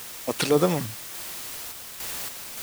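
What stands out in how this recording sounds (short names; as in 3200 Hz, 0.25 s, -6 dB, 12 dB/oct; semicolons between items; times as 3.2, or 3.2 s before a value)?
a quantiser's noise floor 6-bit, dither triangular; random-step tremolo, depth 55%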